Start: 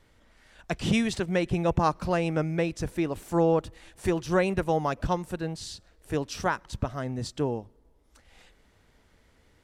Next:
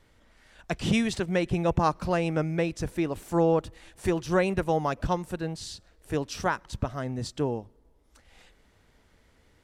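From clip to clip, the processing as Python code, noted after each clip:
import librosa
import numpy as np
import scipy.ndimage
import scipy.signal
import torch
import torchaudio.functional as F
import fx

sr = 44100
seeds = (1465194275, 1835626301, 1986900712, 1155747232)

y = x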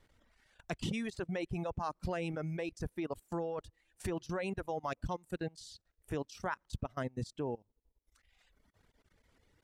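y = fx.transient(x, sr, attack_db=4, sustain_db=-4)
y = fx.level_steps(y, sr, step_db=16)
y = fx.dereverb_blind(y, sr, rt60_s=1.5)
y = y * 10.0 ** (-2.5 / 20.0)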